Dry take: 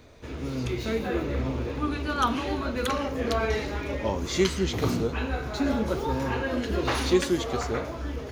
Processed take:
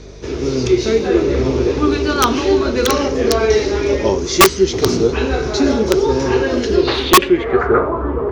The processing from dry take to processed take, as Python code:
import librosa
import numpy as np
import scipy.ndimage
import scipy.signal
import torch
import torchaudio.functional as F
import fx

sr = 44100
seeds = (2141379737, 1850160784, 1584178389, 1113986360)

y = fx.peak_eq(x, sr, hz=390.0, db=14.5, octaves=0.42)
y = fx.rider(y, sr, range_db=4, speed_s=0.5)
y = fx.filter_sweep_lowpass(y, sr, from_hz=5700.0, to_hz=1100.0, start_s=6.7, end_s=7.89, q=4.1)
y = fx.add_hum(y, sr, base_hz=50, snr_db=23)
y = (np.mod(10.0 ** (7.5 / 20.0) * y + 1.0, 2.0) - 1.0) / 10.0 ** (7.5 / 20.0)
y = y * 10.0 ** (5.5 / 20.0)